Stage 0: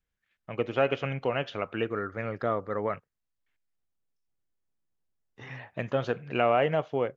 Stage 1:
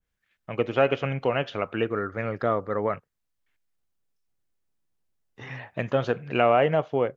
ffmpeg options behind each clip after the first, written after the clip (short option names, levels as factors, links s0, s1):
-af "adynamicequalizer=threshold=0.0126:dfrequency=1600:dqfactor=0.7:tfrequency=1600:tqfactor=0.7:attack=5:release=100:ratio=0.375:range=2.5:mode=cutabove:tftype=highshelf,volume=1.58"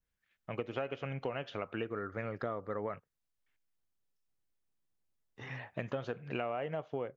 -af "acompressor=threshold=0.0398:ratio=6,volume=0.531"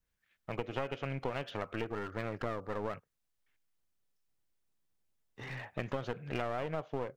-af "aeval=exprs='clip(val(0),-1,0.00631)':c=same,volume=1.33"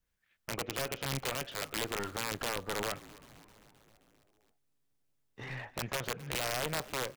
-filter_complex "[0:a]aeval=exprs='(mod(23.7*val(0)+1,2)-1)/23.7':c=same,aeval=exprs='0.0447*(cos(1*acos(clip(val(0)/0.0447,-1,1)))-cos(1*PI/2))+0.00447*(cos(3*acos(clip(val(0)/0.0447,-1,1)))-cos(3*PI/2))':c=same,asplit=7[s0][s1][s2][s3][s4][s5][s6];[s1]adelay=263,afreqshift=-140,volume=0.106[s7];[s2]adelay=526,afreqshift=-280,volume=0.0692[s8];[s3]adelay=789,afreqshift=-420,volume=0.0447[s9];[s4]adelay=1052,afreqshift=-560,volume=0.0292[s10];[s5]adelay=1315,afreqshift=-700,volume=0.0188[s11];[s6]adelay=1578,afreqshift=-840,volume=0.0123[s12];[s0][s7][s8][s9][s10][s11][s12]amix=inputs=7:normalize=0,volume=1.58"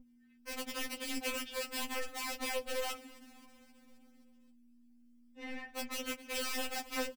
-filter_complex "[0:a]aeval=exprs='val(0)+0.00398*(sin(2*PI*60*n/s)+sin(2*PI*2*60*n/s)/2+sin(2*PI*3*60*n/s)/3+sin(2*PI*4*60*n/s)/4+sin(2*PI*5*60*n/s)/5)':c=same,asplit=2[s0][s1];[s1]adelay=12,volume=0.335[s2];[s0][s2]amix=inputs=2:normalize=0,afftfilt=real='re*3.46*eq(mod(b,12),0)':imag='im*3.46*eq(mod(b,12),0)':win_size=2048:overlap=0.75"